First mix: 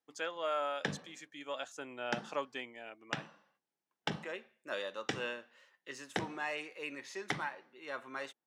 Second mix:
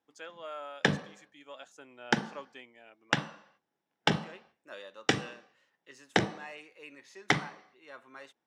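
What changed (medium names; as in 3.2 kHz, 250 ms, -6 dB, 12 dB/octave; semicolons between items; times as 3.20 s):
speech -7.0 dB; background +10.5 dB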